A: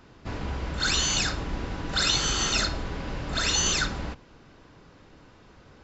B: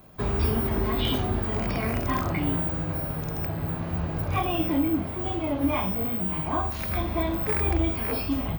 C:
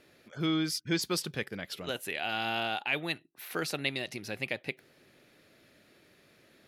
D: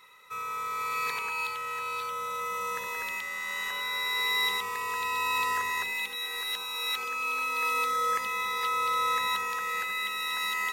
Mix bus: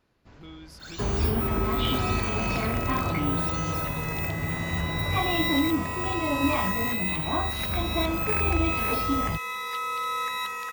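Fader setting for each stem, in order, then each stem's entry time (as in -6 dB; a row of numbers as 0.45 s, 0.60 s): -18.5 dB, -0.5 dB, -16.5 dB, -2.0 dB; 0.00 s, 0.80 s, 0.00 s, 1.10 s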